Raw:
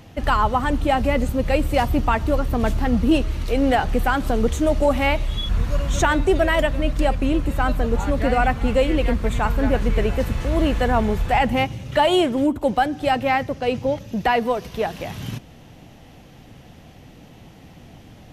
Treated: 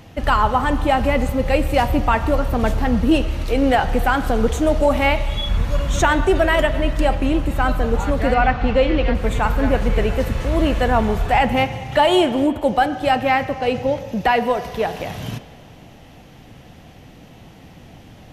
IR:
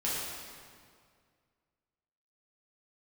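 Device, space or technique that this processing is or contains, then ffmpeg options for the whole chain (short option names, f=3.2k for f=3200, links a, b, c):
filtered reverb send: -filter_complex "[0:a]asplit=2[a][b];[b]highpass=440,lowpass=4.1k[c];[1:a]atrim=start_sample=2205[d];[c][d]afir=irnorm=-1:irlink=0,volume=-15.5dB[e];[a][e]amix=inputs=2:normalize=0,asettb=1/sr,asplit=3[f][g][h];[f]atrim=end=8.344[i];[g]atrim=start=8.34:end=9.15,asetpts=PTS-STARTPTS,afade=t=in:d=0.004:c=qsin,afade=t=out:st=0.806:d=0.004:c=qsin,lowpass=f=5.4k:w=0.5412,lowpass=f=5.4k:w=1.3066[j];[h]atrim=start=9.146[k];[i][j]acrossfade=d=0.004:c1=hsin:c2=qsin[l];[l][k]acrossfade=d=0.004:c1=qsin:c2=hsin,volume=1.5dB"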